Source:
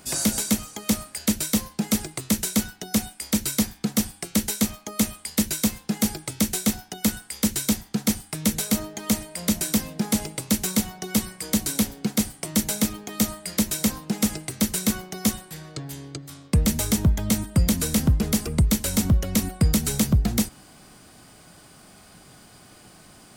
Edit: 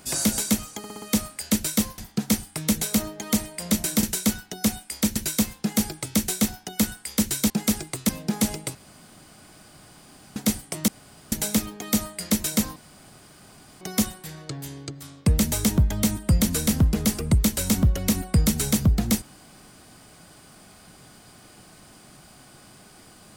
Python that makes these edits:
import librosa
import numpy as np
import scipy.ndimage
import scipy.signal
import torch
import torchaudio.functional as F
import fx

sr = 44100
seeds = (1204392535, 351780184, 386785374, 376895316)

y = fx.edit(x, sr, fx.stutter(start_s=0.78, slice_s=0.06, count=5),
    fx.swap(start_s=1.74, length_s=0.59, other_s=7.75, other_length_s=2.05),
    fx.cut(start_s=3.46, length_s=1.95),
    fx.room_tone_fill(start_s=10.46, length_s=1.61),
    fx.insert_room_tone(at_s=12.59, length_s=0.44),
    fx.room_tone_fill(start_s=14.03, length_s=1.05), tone=tone)